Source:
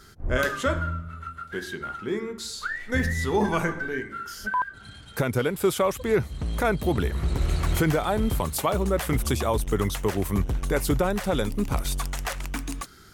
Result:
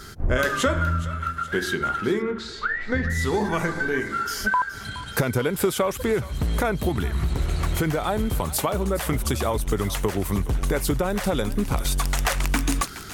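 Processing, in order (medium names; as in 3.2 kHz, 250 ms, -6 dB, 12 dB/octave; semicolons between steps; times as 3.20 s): compression, threshold -28 dBFS, peak gain reduction 10.5 dB; thinning echo 419 ms, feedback 66%, high-pass 840 Hz, level -14.5 dB; gain riding 2 s; 2.22–3.10 s: low-pass 2.7 kHz 12 dB/octave; 6.89–7.36 s: peaking EQ 510 Hz -9.5 dB 0.52 oct; trim +8 dB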